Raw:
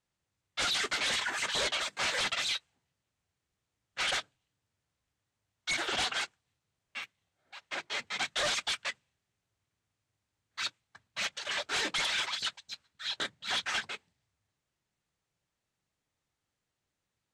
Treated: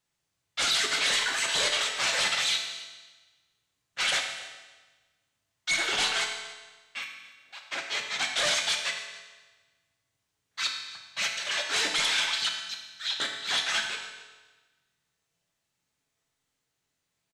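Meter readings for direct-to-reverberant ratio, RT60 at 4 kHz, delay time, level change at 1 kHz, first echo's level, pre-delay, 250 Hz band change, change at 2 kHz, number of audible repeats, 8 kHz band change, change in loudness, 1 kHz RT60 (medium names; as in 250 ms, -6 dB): 2.0 dB, 1.2 s, 286 ms, +3.0 dB, -19.5 dB, 5 ms, +1.0 dB, +5.0 dB, 1, +7.0 dB, +5.0 dB, 1.3 s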